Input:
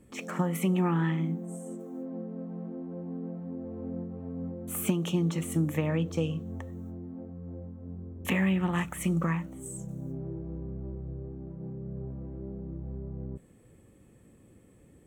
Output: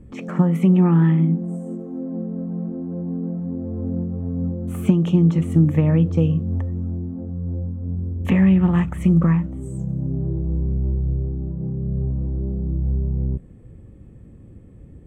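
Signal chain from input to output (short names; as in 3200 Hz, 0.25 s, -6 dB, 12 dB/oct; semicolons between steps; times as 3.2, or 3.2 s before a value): RIAA curve playback; gain +3.5 dB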